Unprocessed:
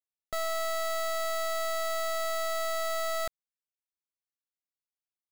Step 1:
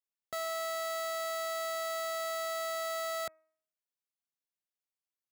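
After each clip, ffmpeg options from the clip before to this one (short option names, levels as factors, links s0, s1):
-af "highpass=120,bandreject=f=317.1:t=h:w=4,bandreject=f=634.2:t=h:w=4,bandreject=f=951.3:t=h:w=4,bandreject=f=1268.4:t=h:w=4,bandreject=f=1585.5:t=h:w=4,bandreject=f=1902.6:t=h:w=4,bandreject=f=2219.7:t=h:w=4,bandreject=f=2536.8:t=h:w=4,volume=0.668"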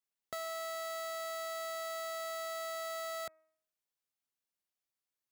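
-af "acompressor=threshold=0.00794:ratio=2,volume=1.12"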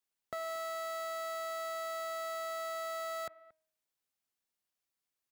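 -filter_complex "[0:a]acrossover=split=2400[s0][s1];[s0]aecho=1:1:229:0.106[s2];[s1]alimiter=level_in=7.5:limit=0.0631:level=0:latency=1:release=462,volume=0.133[s3];[s2][s3]amix=inputs=2:normalize=0,volume=1.26"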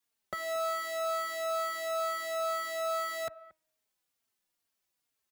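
-filter_complex "[0:a]asplit=2[s0][s1];[s1]adelay=3.7,afreqshift=-2.2[s2];[s0][s2]amix=inputs=2:normalize=1,volume=2.66"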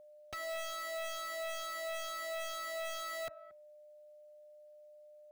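-af "aeval=exprs='0.0251*(abs(mod(val(0)/0.0251+3,4)-2)-1)':c=same,aeval=exprs='val(0)+0.00282*sin(2*PI*600*n/s)':c=same,volume=0.668"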